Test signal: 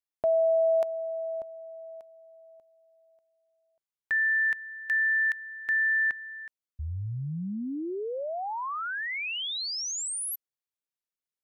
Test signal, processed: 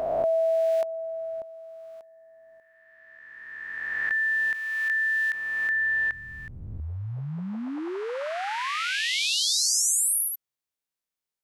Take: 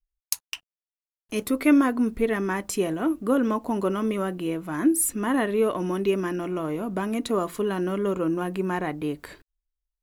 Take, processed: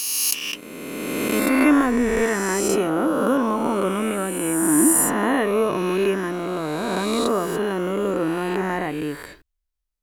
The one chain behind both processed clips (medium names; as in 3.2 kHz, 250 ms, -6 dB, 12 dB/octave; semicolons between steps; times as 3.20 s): reverse spectral sustain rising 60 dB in 2.32 s